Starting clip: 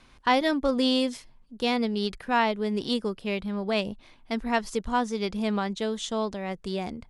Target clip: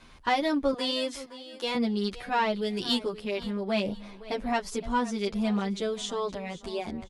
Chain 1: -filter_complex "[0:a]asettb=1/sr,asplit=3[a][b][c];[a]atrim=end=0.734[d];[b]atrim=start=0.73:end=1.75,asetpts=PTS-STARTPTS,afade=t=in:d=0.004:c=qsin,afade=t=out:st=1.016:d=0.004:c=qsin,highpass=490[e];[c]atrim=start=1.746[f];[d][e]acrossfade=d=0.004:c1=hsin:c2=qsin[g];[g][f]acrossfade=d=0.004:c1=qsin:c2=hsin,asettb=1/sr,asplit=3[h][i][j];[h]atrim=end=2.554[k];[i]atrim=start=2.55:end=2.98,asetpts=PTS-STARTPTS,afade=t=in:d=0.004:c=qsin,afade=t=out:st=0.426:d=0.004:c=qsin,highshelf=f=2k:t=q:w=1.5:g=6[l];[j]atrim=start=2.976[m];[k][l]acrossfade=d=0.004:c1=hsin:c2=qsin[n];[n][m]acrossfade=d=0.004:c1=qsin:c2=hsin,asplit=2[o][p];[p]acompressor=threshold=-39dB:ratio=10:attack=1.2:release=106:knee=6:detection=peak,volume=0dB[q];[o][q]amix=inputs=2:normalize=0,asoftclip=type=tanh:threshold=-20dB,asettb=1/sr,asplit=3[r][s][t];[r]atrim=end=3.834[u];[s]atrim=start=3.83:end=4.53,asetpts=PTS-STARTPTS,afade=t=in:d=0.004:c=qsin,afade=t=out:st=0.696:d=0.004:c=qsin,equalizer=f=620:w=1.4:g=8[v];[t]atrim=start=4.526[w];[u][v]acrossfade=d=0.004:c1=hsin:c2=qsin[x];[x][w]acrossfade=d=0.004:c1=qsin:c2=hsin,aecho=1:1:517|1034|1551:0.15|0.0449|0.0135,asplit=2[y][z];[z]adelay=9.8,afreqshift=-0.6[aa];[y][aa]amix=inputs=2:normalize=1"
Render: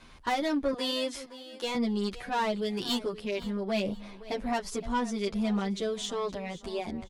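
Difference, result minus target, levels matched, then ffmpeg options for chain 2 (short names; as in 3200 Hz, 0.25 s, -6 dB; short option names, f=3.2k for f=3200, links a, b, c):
soft clip: distortion +14 dB
-filter_complex "[0:a]asettb=1/sr,asplit=3[a][b][c];[a]atrim=end=0.734[d];[b]atrim=start=0.73:end=1.75,asetpts=PTS-STARTPTS,afade=t=in:d=0.004:c=qsin,afade=t=out:st=1.016:d=0.004:c=qsin,highpass=490[e];[c]atrim=start=1.746[f];[d][e]acrossfade=d=0.004:c1=hsin:c2=qsin[g];[g][f]acrossfade=d=0.004:c1=qsin:c2=hsin,asettb=1/sr,asplit=3[h][i][j];[h]atrim=end=2.554[k];[i]atrim=start=2.55:end=2.98,asetpts=PTS-STARTPTS,afade=t=in:d=0.004:c=qsin,afade=t=out:st=0.426:d=0.004:c=qsin,highshelf=f=2k:t=q:w=1.5:g=6[l];[j]atrim=start=2.976[m];[k][l]acrossfade=d=0.004:c1=hsin:c2=qsin[n];[n][m]acrossfade=d=0.004:c1=qsin:c2=hsin,asplit=2[o][p];[p]acompressor=threshold=-39dB:ratio=10:attack=1.2:release=106:knee=6:detection=peak,volume=0dB[q];[o][q]amix=inputs=2:normalize=0,asoftclip=type=tanh:threshold=-9.5dB,asettb=1/sr,asplit=3[r][s][t];[r]atrim=end=3.834[u];[s]atrim=start=3.83:end=4.53,asetpts=PTS-STARTPTS,afade=t=in:d=0.004:c=qsin,afade=t=out:st=0.696:d=0.004:c=qsin,equalizer=f=620:w=1.4:g=8[v];[t]atrim=start=4.526[w];[u][v]acrossfade=d=0.004:c1=hsin:c2=qsin[x];[x][w]acrossfade=d=0.004:c1=qsin:c2=hsin,aecho=1:1:517|1034|1551:0.15|0.0449|0.0135,asplit=2[y][z];[z]adelay=9.8,afreqshift=-0.6[aa];[y][aa]amix=inputs=2:normalize=1"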